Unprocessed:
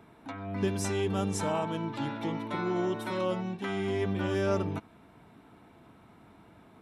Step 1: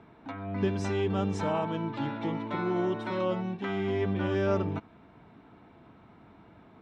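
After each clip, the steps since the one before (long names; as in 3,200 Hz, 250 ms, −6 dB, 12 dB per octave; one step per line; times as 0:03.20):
high-frequency loss of the air 150 metres
level +1.5 dB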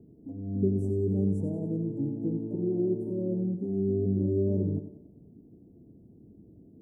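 inverse Chebyshev band-stop filter 1,300–3,800 Hz, stop band 70 dB
feedback echo with a high-pass in the loop 93 ms, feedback 54%, high-pass 200 Hz, level −9 dB
level +2.5 dB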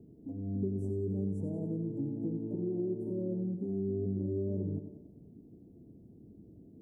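downward compressor 2.5 to 1, threshold −32 dBFS, peak gain reduction 8 dB
level −1 dB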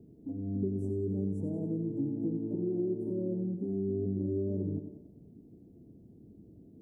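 dynamic equaliser 300 Hz, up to +4 dB, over −49 dBFS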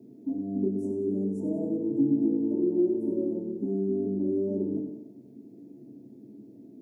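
high-pass filter 230 Hz 12 dB per octave
convolution reverb RT60 0.40 s, pre-delay 3 ms, DRR 1.5 dB
level +5.5 dB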